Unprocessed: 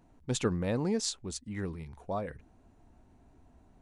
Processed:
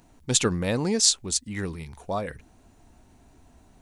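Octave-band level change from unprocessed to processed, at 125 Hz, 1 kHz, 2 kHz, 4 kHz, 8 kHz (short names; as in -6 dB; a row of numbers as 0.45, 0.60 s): +4.5, +6.0, +9.0, +13.5, +15.5 dB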